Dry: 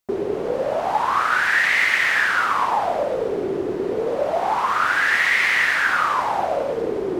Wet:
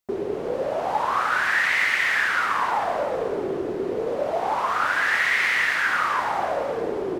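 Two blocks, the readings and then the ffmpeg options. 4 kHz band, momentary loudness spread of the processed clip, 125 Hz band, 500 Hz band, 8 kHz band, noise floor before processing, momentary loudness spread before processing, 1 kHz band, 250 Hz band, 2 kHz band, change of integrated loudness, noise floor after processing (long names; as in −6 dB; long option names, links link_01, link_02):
−3.0 dB, 8 LU, −3.0 dB, −3.0 dB, −3.0 dB, −26 dBFS, 8 LU, −3.0 dB, −3.0 dB, −3.0 dB, −3.0 dB, −29 dBFS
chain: -af "aecho=1:1:316|632|948|1264:0.282|0.116|0.0474|0.0194,volume=-3.5dB"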